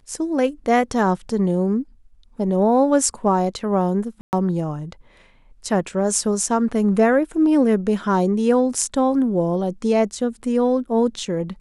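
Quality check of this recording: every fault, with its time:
4.21–4.33 gap 0.119 s

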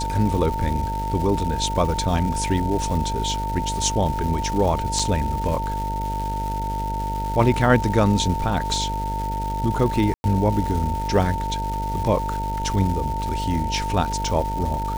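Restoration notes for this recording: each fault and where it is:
buzz 50 Hz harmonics 14 -28 dBFS
crackle 450/s -29 dBFS
tone 900 Hz -26 dBFS
4.99 gap 4.3 ms
10.14–10.24 gap 0.101 s

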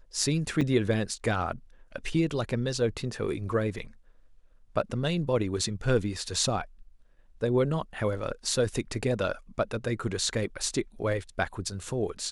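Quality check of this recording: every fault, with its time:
0.61 gap 4 ms

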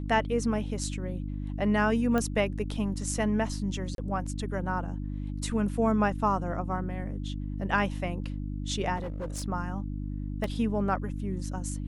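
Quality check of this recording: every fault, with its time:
hum 50 Hz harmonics 6 -34 dBFS
2.18 pop -16 dBFS
3.95–3.98 gap 32 ms
8.96–9.44 clipped -30.5 dBFS
10.44 gap 2.5 ms

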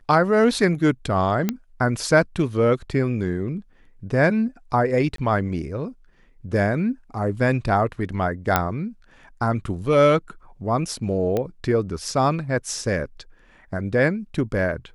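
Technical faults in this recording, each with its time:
1.49 pop -8 dBFS
5.16–5.18 gap 23 ms
8.56 pop -3 dBFS
11.37 pop -12 dBFS

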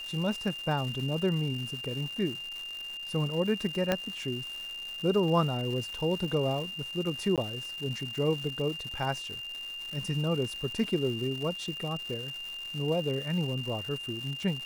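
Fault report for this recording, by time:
crackle 390/s -37 dBFS
tone 2800 Hz -37 dBFS
3.92 pop -12 dBFS
7.36–7.38 gap 17 ms
10.84 gap 3 ms

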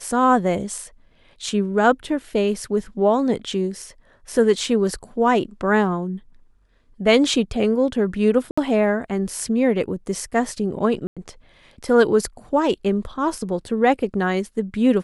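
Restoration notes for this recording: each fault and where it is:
8.51–8.57 gap 65 ms
11.07–11.17 gap 96 ms

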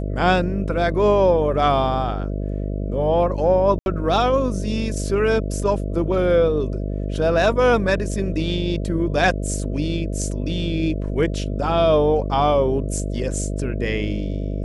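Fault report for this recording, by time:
buzz 50 Hz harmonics 13 -25 dBFS
3.79–3.86 gap 71 ms

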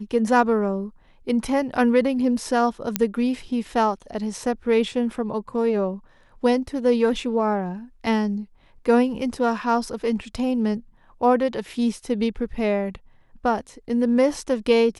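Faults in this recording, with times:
2.96 pop -4 dBFS

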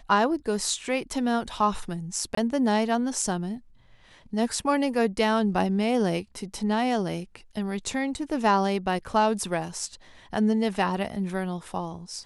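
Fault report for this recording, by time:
2.35–2.37 gap 24 ms

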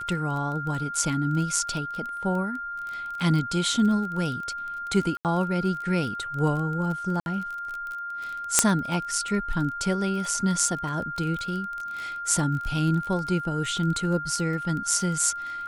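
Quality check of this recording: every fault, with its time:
crackle 21/s -31 dBFS
tone 1400 Hz -31 dBFS
5.17–5.25 gap 78 ms
7.2–7.26 gap 61 ms
8.59 pop 0 dBFS

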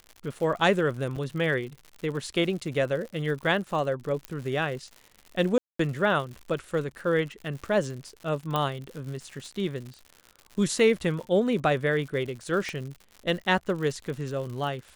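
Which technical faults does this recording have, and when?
crackle 120/s -36 dBFS
1.16–1.17 gap 5.9 ms
4.25 pop -17 dBFS
5.58–5.79 gap 0.214 s
8.56 pop -14 dBFS
12.69 pop -21 dBFS

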